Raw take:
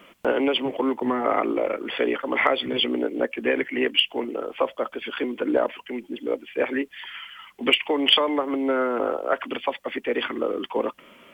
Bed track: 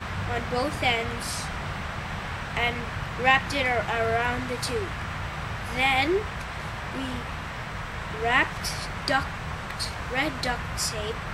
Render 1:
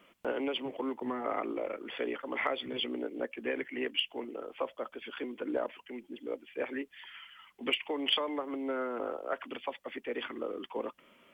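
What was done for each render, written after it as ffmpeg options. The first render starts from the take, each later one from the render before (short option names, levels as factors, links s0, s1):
-af "volume=0.266"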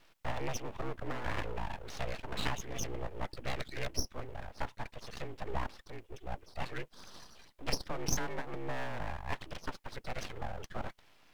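-af "afreqshift=-100,aeval=exprs='abs(val(0))':c=same"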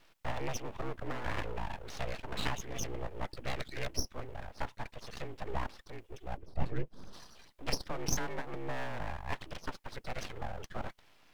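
-filter_complex "[0:a]asettb=1/sr,asplit=3[s0][s1][s2];[s0]atrim=end=6.374[s3];[s1]atrim=start=6.37:end=7.13,asetpts=PTS-STARTPTS,afade=t=in:d=0.004:c=qsin,afade=t=out:st=0.756:d=0.004:c=qsin,tiltshelf=f=720:g=9.5[s4];[s2]atrim=start=7.126[s5];[s3][s4]acrossfade=d=0.004:c1=hsin:c2=qsin[s6];[s6][s5]acrossfade=d=0.004:c1=qsin:c2=hsin"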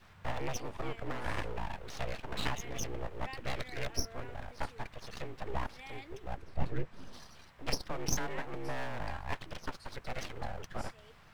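-filter_complex "[1:a]volume=0.0447[s0];[0:a][s0]amix=inputs=2:normalize=0"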